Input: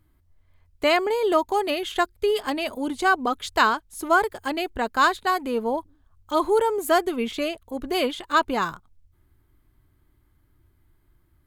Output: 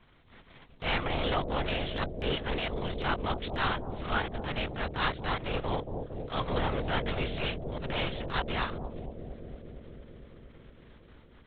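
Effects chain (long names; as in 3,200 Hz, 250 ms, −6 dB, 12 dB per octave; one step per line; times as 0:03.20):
compressing power law on the bin magnitudes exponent 0.48
in parallel at −11.5 dB: sine wavefolder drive 7 dB, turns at −3 dBFS
on the sum: linear-prediction vocoder at 8 kHz whisper
downward compressor 1.5 to 1, threshold −41 dBFS, peak gain reduction 11 dB
transient designer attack −8 dB, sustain −3 dB
on a send: bucket-brigade delay 229 ms, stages 1,024, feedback 81%, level −5 dB
on the sum: level −2 dB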